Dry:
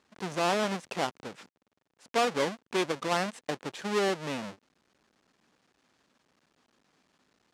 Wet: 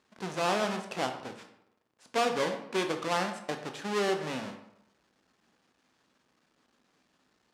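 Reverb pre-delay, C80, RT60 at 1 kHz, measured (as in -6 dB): 13 ms, 11.0 dB, 0.80 s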